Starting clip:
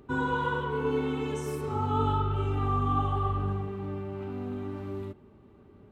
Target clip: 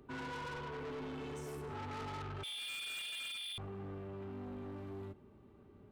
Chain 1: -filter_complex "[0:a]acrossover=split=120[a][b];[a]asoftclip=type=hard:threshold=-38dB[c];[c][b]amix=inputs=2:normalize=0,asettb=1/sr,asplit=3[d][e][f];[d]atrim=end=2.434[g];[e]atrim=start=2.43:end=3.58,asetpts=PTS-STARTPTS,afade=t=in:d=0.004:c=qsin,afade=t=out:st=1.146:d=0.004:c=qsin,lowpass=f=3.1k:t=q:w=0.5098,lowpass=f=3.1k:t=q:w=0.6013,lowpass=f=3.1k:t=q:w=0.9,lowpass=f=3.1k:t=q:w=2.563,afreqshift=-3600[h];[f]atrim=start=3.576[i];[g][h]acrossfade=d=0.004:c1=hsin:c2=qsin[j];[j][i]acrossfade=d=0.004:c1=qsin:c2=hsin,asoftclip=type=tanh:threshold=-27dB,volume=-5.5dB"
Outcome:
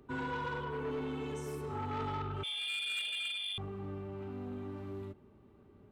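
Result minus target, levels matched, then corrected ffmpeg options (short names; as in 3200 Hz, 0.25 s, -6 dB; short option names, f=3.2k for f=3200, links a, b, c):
soft clip: distortion -7 dB
-filter_complex "[0:a]acrossover=split=120[a][b];[a]asoftclip=type=hard:threshold=-38dB[c];[c][b]amix=inputs=2:normalize=0,asettb=1/sr,asplit=3[d][e][f];[d]atrim=end=2.434[g];[e]atrim=start=2.43:end=3.58,asetpts=PTS-STARTPTS,afade=t=in:d=0.004:c=qsin,afade=t=out:st=1.146:d=0.004:c=qsin,lowpass=f=3.1k:t=q:w=0.5098,lowpass=f=3.1k:t=q:w=0.6013,lowpass=f=3.1k:t=q:w=0.9,lowpass=f=3.1k:t=q:w=2.563,afreqshift=-3600[h];[f]atrim=start=3.576[i];[g][h]acrossfade=d=0.004:c1=hsin:c2=qsin[j];[j][i]acrossfade=d=0.004:c1=qsin:c2=hsin,asoftclip=type=tanh:threshold=-36dB,volume=-5.5dB"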